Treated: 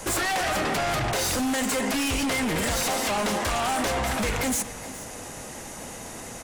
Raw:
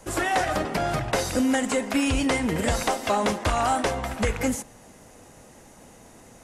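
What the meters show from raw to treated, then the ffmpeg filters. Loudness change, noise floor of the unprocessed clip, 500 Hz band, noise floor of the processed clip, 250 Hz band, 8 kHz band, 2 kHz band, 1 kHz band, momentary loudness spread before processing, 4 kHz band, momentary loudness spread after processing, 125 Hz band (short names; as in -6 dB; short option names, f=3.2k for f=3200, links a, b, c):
0.0 dB, -50 dBFS, -2.0 dB, -39 dBFS, -2.5 dB, +4.5 dB, +1.5 dB, -1.0 dB, 4 LU, +3.5 dB, 13 LU, -2.0 dB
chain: -af "tiltshelf=f=970:g=-3,alimiter=limit=-21.5dB:level=0:latency=1,acompressor=threshold=-29dB:ratio=2.5,aeval=exprs='0.178*sin(PI/2*5.62*val(0)/0.178)':c=same,aecho=1:1:421:0.133,volume=-7.5dB"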